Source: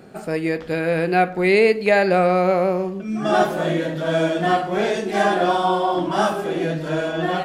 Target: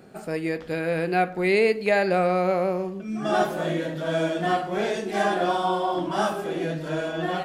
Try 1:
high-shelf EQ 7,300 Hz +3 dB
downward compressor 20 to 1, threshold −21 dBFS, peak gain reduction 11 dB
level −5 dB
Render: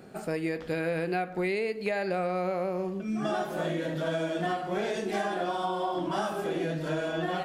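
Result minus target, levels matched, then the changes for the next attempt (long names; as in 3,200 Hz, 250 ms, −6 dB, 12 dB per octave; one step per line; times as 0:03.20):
downward compressor: peak gain reduction +11 dB
remove: downward compressor 20 to 1, threshold −21 dBFS, peak gain reduction 11 dB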